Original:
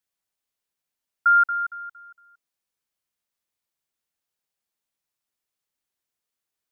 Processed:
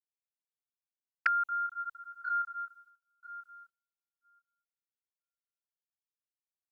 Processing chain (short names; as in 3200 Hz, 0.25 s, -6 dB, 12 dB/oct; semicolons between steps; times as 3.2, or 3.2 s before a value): regenerating reverse delay 0.492 s, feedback 45%, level -12 dB; expander -51 dBFS; in parallel at 0 dB: limiter -17.5 dBFS, peak gain reduction 5.5 dB; on the sum: envelope flanger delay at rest 5.8 ms, full sweep at -16 dBFS; gain -5 dB